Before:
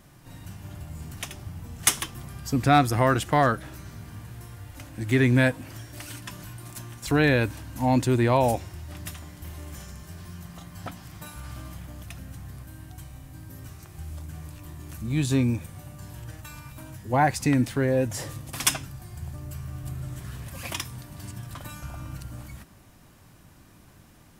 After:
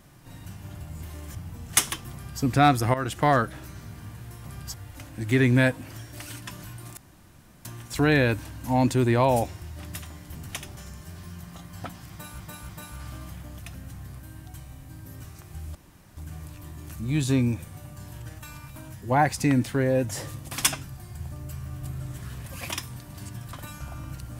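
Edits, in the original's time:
1.03–1.45 swap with 9.47–9.79
2.22–2.52 copy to 4.54
3.04–3.32 fade in, from -13 dB
6.77 insert room tone 0.68 s
11.13–11.42 loop, 3 plays
14.19 insert room tone 0.42 s

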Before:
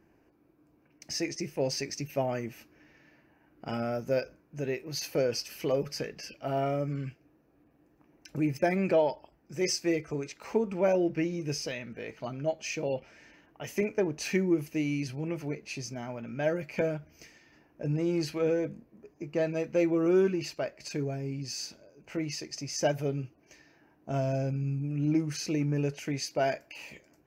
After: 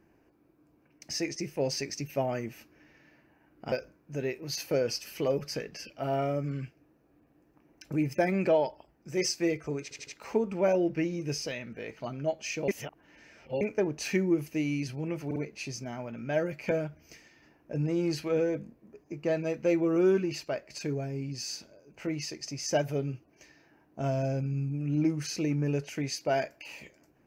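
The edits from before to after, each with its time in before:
3.72–4.16 cut
10.27 stutter 0.08 s, 4 plays
12.88–13.81 reverse
15.46 stutter 0.05 s, 3 plays

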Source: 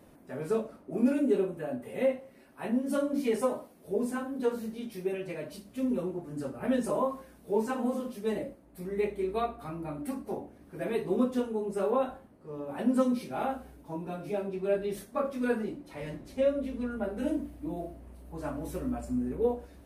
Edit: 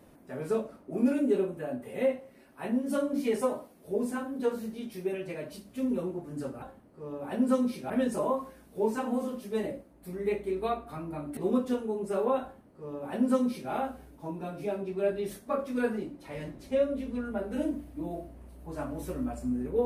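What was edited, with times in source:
10.09–11.03 cut
12.09–13.37 copy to 6.62

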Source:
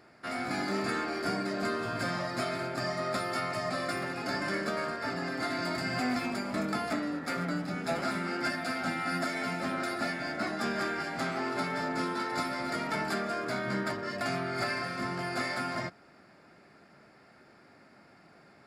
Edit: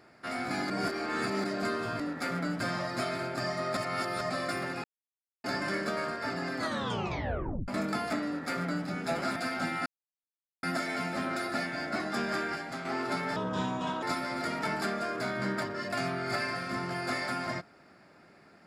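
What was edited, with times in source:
0.7–1.44 reverse
3.17–3.61 reverse
4.24 insert silence 0.60 s
5.37 tape stop 1.11 s
7.06–7.66 copy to 2
8.16–8.6 cut
9.1 insert silence 0.77 s
11–11.32 fade out quadratic, to -6.5 dB
11.83–12.31 speed 72%

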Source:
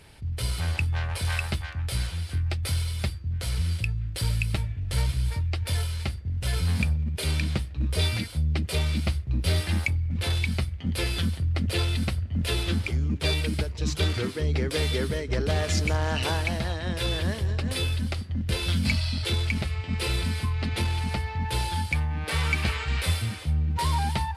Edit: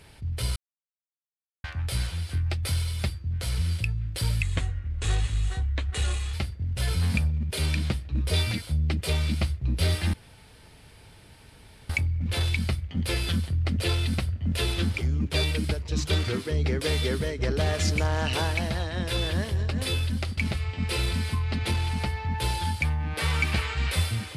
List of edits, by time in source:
0.56–1.64 mute
4.42–5.99 speed 82%
9.79 insert room tone 1.76 s
18.27–19.48 cut

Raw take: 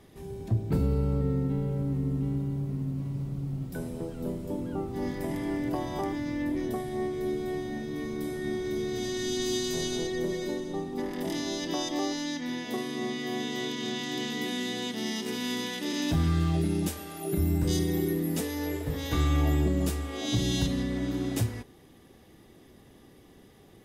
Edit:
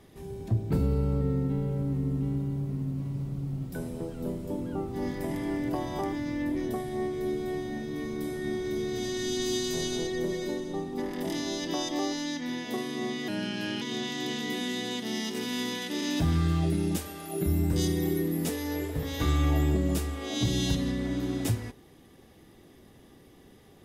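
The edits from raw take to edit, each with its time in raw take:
13.28–13.73 speed 84%

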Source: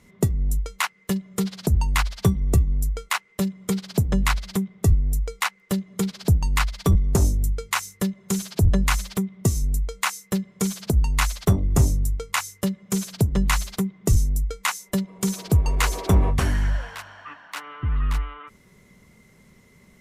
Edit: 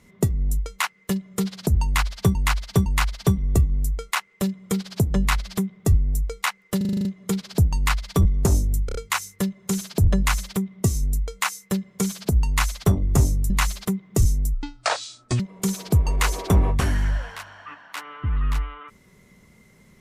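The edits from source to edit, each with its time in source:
1.84–2.35 loop, 3 plays
5.75 stutter 0.04 s, 8 plays
7.56 stutter 0.03 s, 4 plays
12.11–13.41 cut
14.45–14.99 speed 63%

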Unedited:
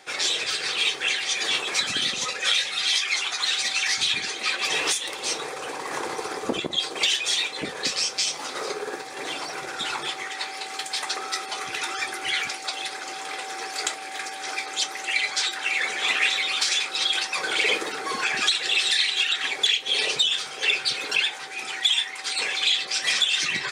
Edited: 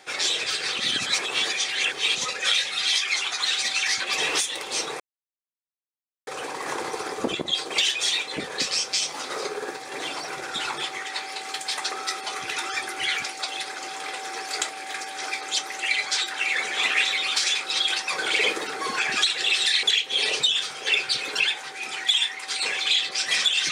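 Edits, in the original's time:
0.78–2.15 reverse
4–4.52 cut
5.52 insert silence 1.27 s
19.08–19.59 cut

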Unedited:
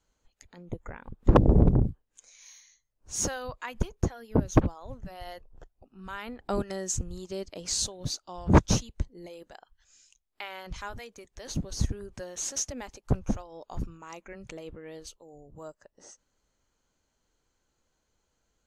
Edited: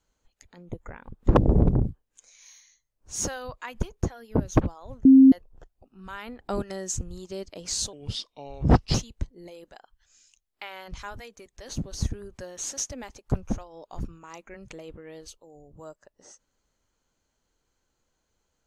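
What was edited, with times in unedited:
5.05–5.32 bleep 266 Hz -9 dBFS
7.93–8.73 speed 79%

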